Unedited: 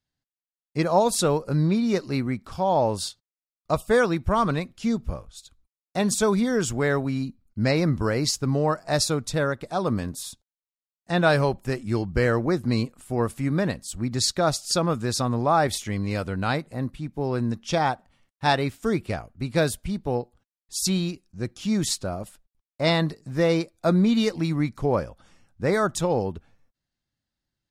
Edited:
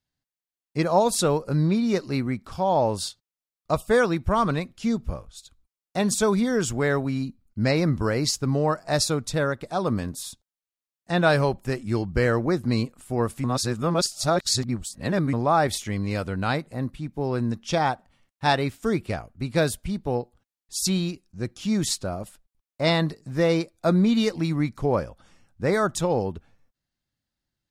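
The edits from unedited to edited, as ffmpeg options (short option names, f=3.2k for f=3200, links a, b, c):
-filter_complex "[0:a]asplit=3[a][b][c];[a]atrim=end=13.442[d];[b]atrim=start=13.438:end=15.332,asetpts=PTS-STARTPTS,areverse[e];[c]atrim=start=15.328[f];[d][e]acrossfade=d=0.004:c1=hsin:c2=hsin[g];[g][f]acrossfade=d=0.004:c1=hsin:c2=hsin"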